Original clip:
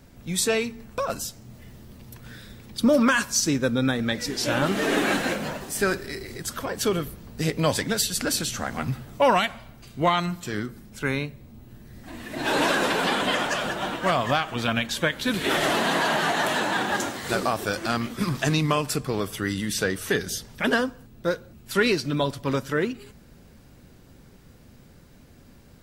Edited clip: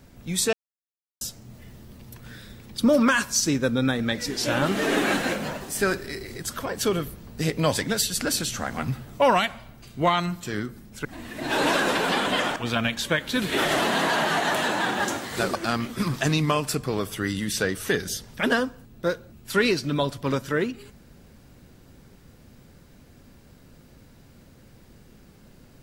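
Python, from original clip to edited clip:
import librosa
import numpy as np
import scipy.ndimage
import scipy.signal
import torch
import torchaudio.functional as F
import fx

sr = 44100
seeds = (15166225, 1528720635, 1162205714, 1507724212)

y = fx.edit(x, sr, fx.silence(start_s=0.53, length_s=0.68),
    fx.cut(start_s=11.05, length_s=0.95),
    fx.cut(start_s=13.51, length_s=0.97),
    fx.cut(start_s=17.47, length_s=0.29), tone=tone)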